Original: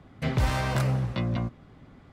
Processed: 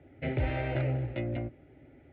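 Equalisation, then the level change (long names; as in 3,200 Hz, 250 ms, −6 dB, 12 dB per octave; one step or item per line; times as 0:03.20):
high-frequency loss of the air 240 metres
loudspeaker in its box 110–2,400 Hz, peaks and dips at 110 Hz −6 dB, 210 Hz −5 dB, 460 Hz −9 dB, 710 Hz −6 dB, 1,000 Hz −6 dB, 1,600 Hz −6 dB
phaser with its sweep stopped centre 460 Hz, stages 4
+6.5 dB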